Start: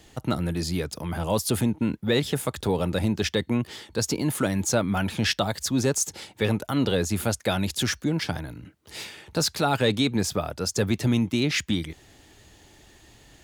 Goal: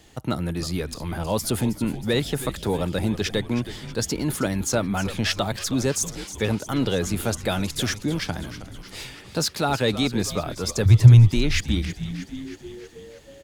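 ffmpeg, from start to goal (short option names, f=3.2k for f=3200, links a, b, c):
-filter_complex "[0:a]asettb=1/sr,asplit=3[a][b][c];[a]atrim=end=10.854[d];[b]atrim=start=10.85:end=11.34,asetpts=PTS-STARTPTS,afade=t=in:d=0.004:c=qsin,afade=t=out:st=0.486:d=0.004:c=qsin,lowshelf=f=160:t=q:w=3:g=11[e];[c]atrim=start=11.336[f];[d][e]acrossfade=d=0.004:c1=hsin:c2=qsin[g];[g][f]acrossfade=d=0.004:c1=qsin:c2=hsin,asplit=8[h][i][j][k][l][m][n][o];[i]adelay=318,afreqshift=-96,volume=-13dB[p];[j]adelay=636,afreqshift=-192,volume=-17.3dB[q];[k]adelay=954,afreqshift=-288,volume=-21.6dB[r];[l]adelay=1272,afreqshift=-384,volume=-25.9dB[s];[m]adelay=1590,afreqshift=-480,volume=-30.2dB[t];[n]adelay=1908,afreqshift=-576,volume=-34.5dB[u];[o]adelay=2226,afreqshift=-672,volume=-38.8dB[v];[h][p][q][r][s][t][u][v]amix=inputs=8:normalize=0"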